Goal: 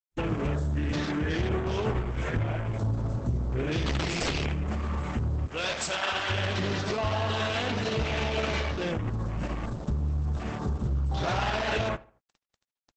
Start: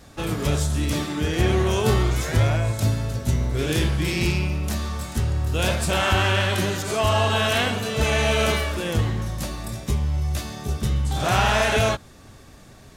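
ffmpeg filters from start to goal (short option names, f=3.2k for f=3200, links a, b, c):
-filter_complex "[0:a]acrusher=bits=5:mix=0:aa=0.000001,acontrast=21,asplit=3[a][b][c];[a]afade=t=out:st=3.85:d=0.02[d];[b]aeval=exprs='(mod(3.98*val(0)+1,2)-1)/3.98':c=same,afade=t=in:st=3.85:d=0.02,afade=t=out:st=4.55:d=0.02[e];[c]afade=t=in:st=4.55:d=0.02[f];[d][e][f]amix=inputs=3:normalize=0,asplit=3[g][h][i];[g]afade=t=out:st=5.46:d=0.02[j];[h]highpass=f=780:p=1,afade=t=in:st=5.46:d=0.02,afade=t=out:st=6.29:d=0.02[k];[i]afade=t=in:st=6.29:d=0.02[l];[j][k][l]amix=inputs=3:normalize=0,acompressor=threshold=-26dB:ratio=2.5,lowpass=f=9.3k:w=0.5412,lowpass=f=9.3k:w=1.3066,afwtdn=0.0141,asplit=3[m][n][o];[m]afade=t=out:st=0.5:d=0.02[p];[n]equalizer=f=1.7k:t=o:w=0.2:g=8.5,afade=t=in:st=0.5:d=0.02,afade=t=out:st=1.36:d=0.02[q];[o]afade=t=in:st=1.36:d=0.02[r];[p][q][r]amix=inputs=3:normalize=0,asoftclip=type=tanh:threshold=-20dB,asplit=2[s][t];[t]adelay=75,lowpass=f=2.4k:p=1,volume=-21dB,asplit=2[u][v];[v]adelay=75,lowpass=f=2.4k:p=1,volume=0.39,asplit=2[w][x];[x]adelay=75,lowpass=f=2.4k:p=1,volume=0.39[y];[u][w][y]amix=inputs=3:normalize=0[z];[s][z]amix=inputs=2:normalize=0" -ar 48000 -c:a libopus -b:a 10k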